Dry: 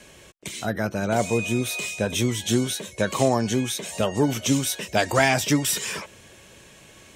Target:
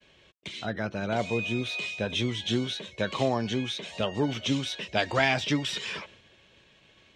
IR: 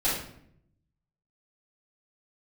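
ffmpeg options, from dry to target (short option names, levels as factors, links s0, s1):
-af "lowpass=f=3600:t=q:w=1.9,agate=range=0.0224:threshold=0.00794:ratio=3:detection=peak,volume=0.501"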